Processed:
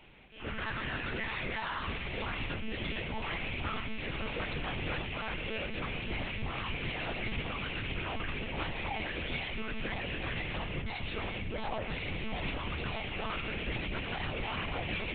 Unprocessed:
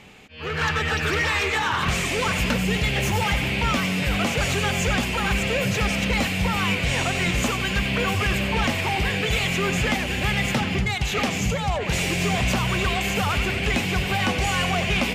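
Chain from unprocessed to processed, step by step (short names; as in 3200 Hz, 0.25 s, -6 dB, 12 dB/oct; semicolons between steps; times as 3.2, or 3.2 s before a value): limiter -19 dBFS, peak gain reduction 5.5 dB; chorus 1.6 Hz, delay 18 ms, depth 6.2 ms; monotone LPC vocoder at 8 kHz 220 Hz; gain -6 dB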